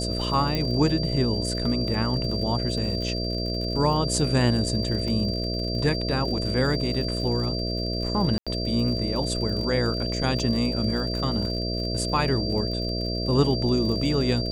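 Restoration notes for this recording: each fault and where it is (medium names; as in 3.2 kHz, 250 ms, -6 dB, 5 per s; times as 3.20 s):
buzz 60 Hz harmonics 11 -29 dBFS
crackle 68 per s -33 dBFS
whine 4.7 kHz -31 dBFS
0.55 s: pop -13 dBFS
5.08 s: dropout 2.5 ms
8.38–8.47 s: dropout 86 ms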